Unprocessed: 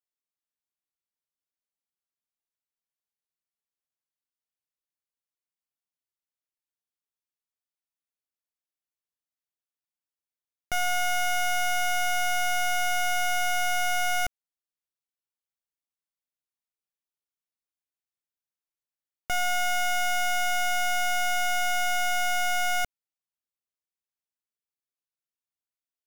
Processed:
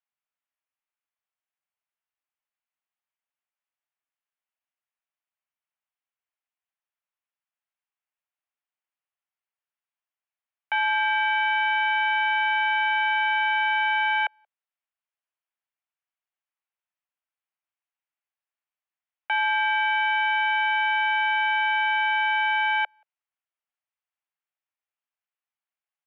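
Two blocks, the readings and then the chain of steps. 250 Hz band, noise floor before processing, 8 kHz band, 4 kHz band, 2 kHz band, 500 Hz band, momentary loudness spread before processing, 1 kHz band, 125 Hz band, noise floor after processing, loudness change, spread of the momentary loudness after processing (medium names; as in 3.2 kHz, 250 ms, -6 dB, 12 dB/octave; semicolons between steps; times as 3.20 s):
under -25 dB, under -85 dBFS, under -35 dB, +1.0 dB, +6.0 dB, under -15 dB, 2 LU, +4.5 dB, no reading, under -85 dBFS, +4.0 dB, 2 LU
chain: speakerphone echo 180 ms, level -29 dB; mistuned SSB +140 Hz 490–2900 Hz; trim +5 dB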